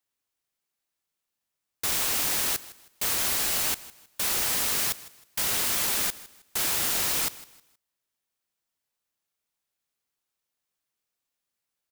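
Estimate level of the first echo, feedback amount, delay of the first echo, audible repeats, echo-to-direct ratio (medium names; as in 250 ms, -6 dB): -18.5 dB, 31%, 158 ms, 2, -18.0 dB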